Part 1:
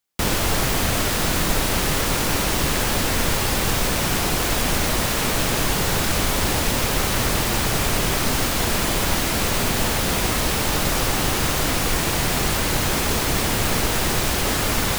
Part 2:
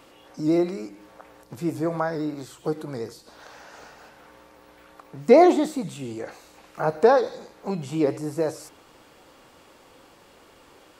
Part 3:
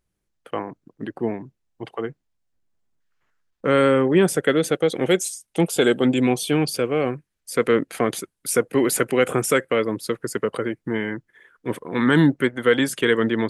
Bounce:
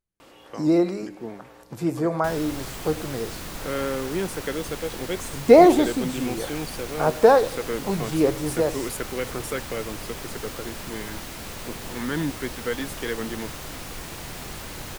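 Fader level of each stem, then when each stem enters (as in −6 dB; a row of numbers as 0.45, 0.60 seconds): −15.0, +2.0, −11.0 decibels; 2.05, 0.20, 0.00 seconds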